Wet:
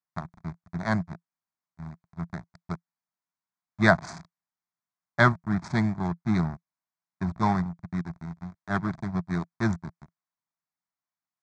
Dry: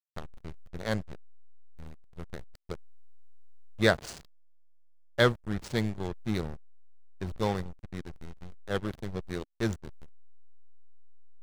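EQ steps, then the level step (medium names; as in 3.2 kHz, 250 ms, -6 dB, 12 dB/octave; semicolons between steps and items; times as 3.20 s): distance through air 84 m; cabinet simulation 110–7900 Hz, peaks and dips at 170 Hz +9 dB, 660 Hz +8 dB, 1 kHz +4 dB, 2.3 kHz +5 dB; static phaser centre 1.2 kHz, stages 4; +7.5 dB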